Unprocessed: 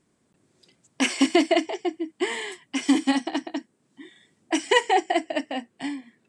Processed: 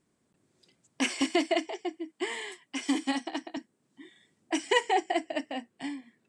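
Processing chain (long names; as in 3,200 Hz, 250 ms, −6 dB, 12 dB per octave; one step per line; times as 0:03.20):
0:01.21–0:03.57: high-pass filter 280 Hz 6 dB per octave
level −5.5 dB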